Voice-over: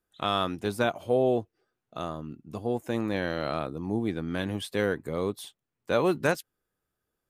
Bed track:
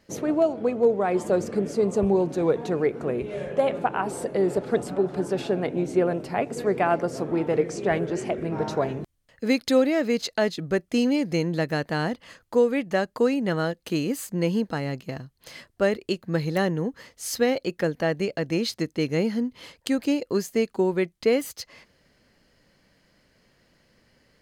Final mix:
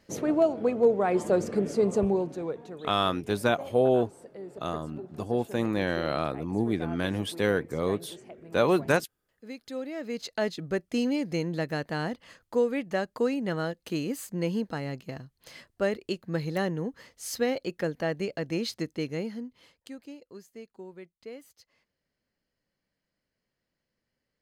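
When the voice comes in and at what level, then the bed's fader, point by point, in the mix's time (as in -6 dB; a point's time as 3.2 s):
2.65 s, +1.5 dB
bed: 1.96 s -1.5 dB
2.9 s -19 dB
9.61 s -19 dB
10.43 s -5 dB
18.9 s -5 dB
20.17 s -21.5 dB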